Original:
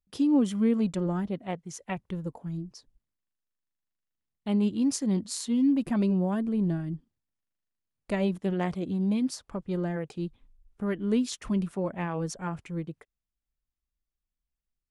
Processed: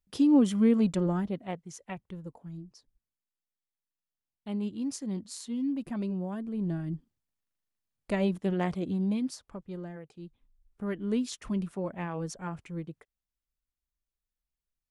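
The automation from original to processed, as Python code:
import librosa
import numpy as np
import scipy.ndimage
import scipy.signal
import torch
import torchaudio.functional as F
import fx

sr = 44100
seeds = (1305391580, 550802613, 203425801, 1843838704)

y = fx.gain(x, sr, db=fx.line((0.99, 1.5), (2.13, -7.5), (6.47, -7.5), (6.9, -0.5), (8.91, -0.5), (10.13, -13.0), (10.88, -3.5)))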